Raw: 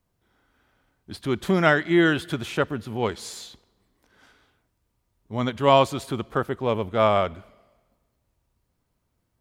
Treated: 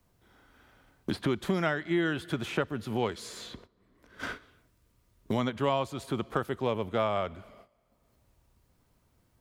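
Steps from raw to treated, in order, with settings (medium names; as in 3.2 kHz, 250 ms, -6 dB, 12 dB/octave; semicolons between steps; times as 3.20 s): 3.13–5.34 s: peaking EQ 820 Hz -12 dB 0.21 oct; gate -57 dBFS, range -17 dB; three bands compressed up and down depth 100%; trim -7.5 dB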